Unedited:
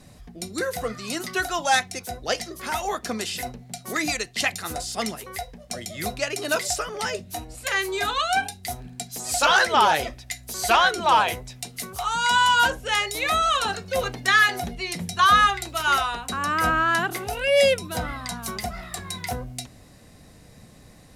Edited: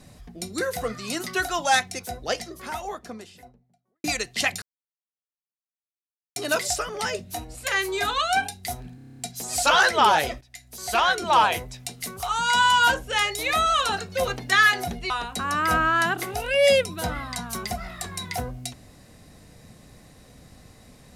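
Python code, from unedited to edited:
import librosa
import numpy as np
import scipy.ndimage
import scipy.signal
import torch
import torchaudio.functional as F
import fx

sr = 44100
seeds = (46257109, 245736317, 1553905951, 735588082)

y = fx.studio_fade_out(x, sr, start_s=1.9, length_s=2.14)
y = fx.edit(y, sr, fx.silence(start_s=4.62, length_s=1.74),
    fx.stutter(start_s=8.95, slice_s=0.03, count=9),
    fx.fade_in_from(start_s=10.17, length_s=0.94, floor_db=-15.5),
    fx.cut(start_s=14.86, length_s=1.17), tone=tone)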